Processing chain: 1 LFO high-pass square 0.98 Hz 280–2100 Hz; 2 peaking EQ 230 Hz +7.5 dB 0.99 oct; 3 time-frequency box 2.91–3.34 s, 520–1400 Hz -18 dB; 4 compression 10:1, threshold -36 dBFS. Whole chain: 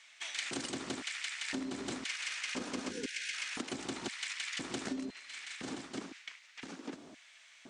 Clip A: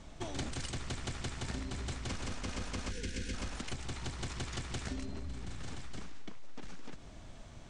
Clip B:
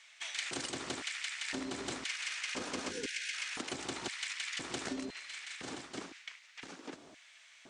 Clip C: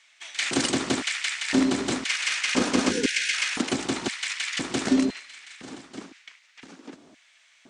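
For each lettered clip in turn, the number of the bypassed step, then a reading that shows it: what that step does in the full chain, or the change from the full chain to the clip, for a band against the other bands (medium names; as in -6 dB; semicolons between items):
1, 125 Hz band +17.0 dB; 2, 250 Hz band -3.5 dB; 4, momentary loudness spread change +7 LU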